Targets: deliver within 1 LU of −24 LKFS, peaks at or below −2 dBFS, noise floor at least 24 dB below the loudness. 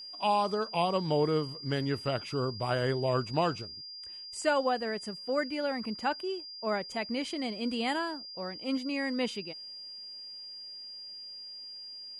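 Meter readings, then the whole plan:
interfering tone 4,800 Hz; level of the tone −42 dBFS; integrated loudness −32.5 LKFS; sample peak −16.0 dBFS; target loudness −24.0 LKFS
→ notch filter 4,800 Hz, Q 30
level +8.5 dB

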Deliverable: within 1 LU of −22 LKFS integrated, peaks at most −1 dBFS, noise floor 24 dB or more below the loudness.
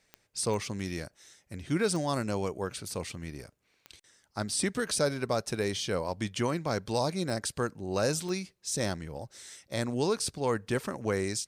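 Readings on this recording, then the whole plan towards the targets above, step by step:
number of clicks 6; integrated loudness −32.0 LKFS; sample peak −15.5 dBFS; target loudness −22.0 LKFS
→ click removal
level +10 dB

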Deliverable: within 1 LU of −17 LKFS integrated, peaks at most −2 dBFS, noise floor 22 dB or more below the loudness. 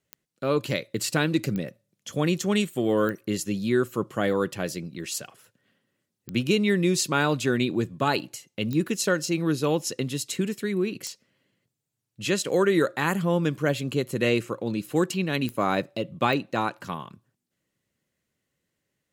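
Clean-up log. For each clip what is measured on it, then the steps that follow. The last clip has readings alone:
number of clicks 8; integrated loudness −26.0 LKFS; sample peak −9.0 dBFS; target loudness −17.0 LKFS
→ click removal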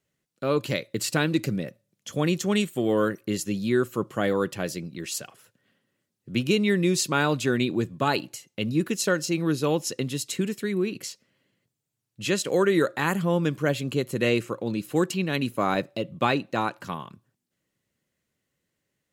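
number of clicks 0; integrated loudness −26.0 LKFS; sample peak −9.0 dBFS; target loudness −17.0 LKFS
→ level +9 dB
brickwall limiter −2 dBFS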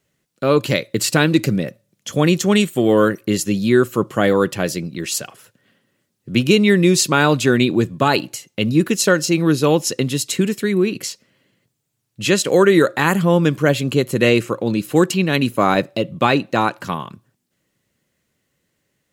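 integrated loudness −17.5 LKFS; sample peak −2.0 dBFS; background noise floor −72 dBFS

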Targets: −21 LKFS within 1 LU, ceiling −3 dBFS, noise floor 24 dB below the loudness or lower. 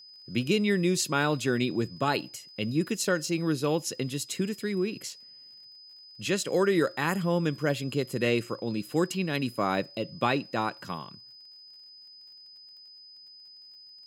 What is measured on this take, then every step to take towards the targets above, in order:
crackle rate 33 per second; interfering tone 5,000 Hz; level of the tone −48 dBFS; integrated loudness −28.5 LKFS; sample peak −11.5 dBFS; target loudness −21.0 LKFS
→ click removal
notch filter 5,000 Hz, Q 30
level +7.5 dB

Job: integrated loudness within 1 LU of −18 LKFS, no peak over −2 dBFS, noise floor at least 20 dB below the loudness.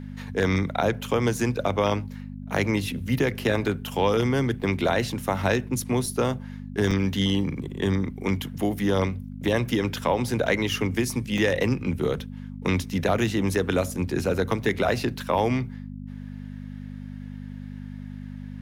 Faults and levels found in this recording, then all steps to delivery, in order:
number of dropouts 5; longest dropout 3.0 ms; mains hum 50 Hz; hum harmonics up to 250 Hz; level of the hum −34 dBFS; integrated loudness −25.5 LKFS; sample peak −8.0 dBFS; target loudness −18.0 LKFS
→ repair the gap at 0:02.58/0:04.62/0:06.06/0:06.91/0:11.38, 3 ms
hum removal 50 Hz, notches 5
level +7.5 dB
brickwall limiter −2 dBFS

